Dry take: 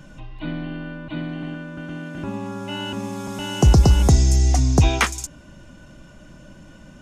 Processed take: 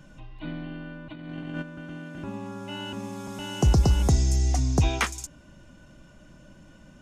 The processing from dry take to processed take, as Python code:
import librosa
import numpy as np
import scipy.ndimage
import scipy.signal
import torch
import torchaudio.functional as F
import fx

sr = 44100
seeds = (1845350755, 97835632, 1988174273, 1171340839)

y = fx.over_compress(x, sr, threshold_db=-33.0, ratio=-0.5, at=(1.11, 1.61), fade=0.02)
y = y * 10.0 ** (-6.5 / 20.0)